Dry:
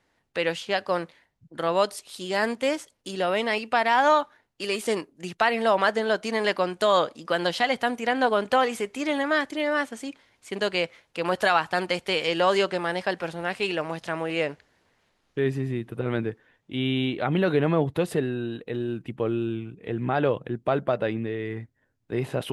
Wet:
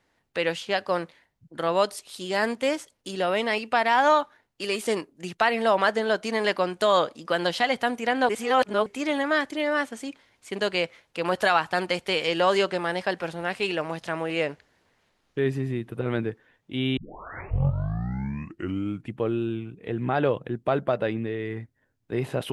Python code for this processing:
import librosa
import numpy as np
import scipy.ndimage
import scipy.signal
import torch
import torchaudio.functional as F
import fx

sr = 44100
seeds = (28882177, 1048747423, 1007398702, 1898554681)

y = fx.edit(x, sr, fx.reverse_span(start_s=8.29, length_s=0.57),
    fx.tape_start(start_s=16.97, length_s=2.22), tone=tone)